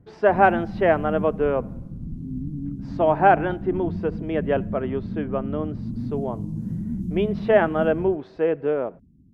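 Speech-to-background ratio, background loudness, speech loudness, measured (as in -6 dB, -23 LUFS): 8.5 dB, -31.5 LUFS, -23.0 LUFS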